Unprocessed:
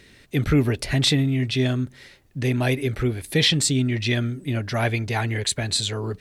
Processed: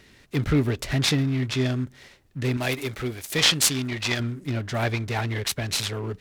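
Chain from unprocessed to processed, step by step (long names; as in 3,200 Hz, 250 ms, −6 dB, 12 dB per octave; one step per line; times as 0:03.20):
0:02.57–0:04.20: spectral tilt +2 dB per octave
short delay modulated by noise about 1,300 Hz, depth 0.032 ms
level −2.5 dB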